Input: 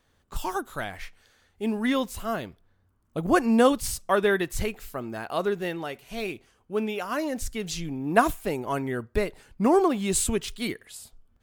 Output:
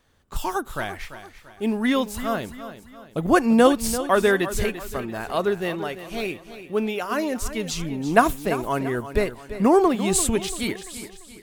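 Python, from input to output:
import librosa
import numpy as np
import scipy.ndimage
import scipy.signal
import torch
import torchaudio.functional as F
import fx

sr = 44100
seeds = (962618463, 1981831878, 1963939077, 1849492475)

y = fx.echo_feedback(x, sr, ms=341, feedback_pct=42, wet_db=-12.5)
y = F.gain(torch.from_numpy(y), 3.5).numpy()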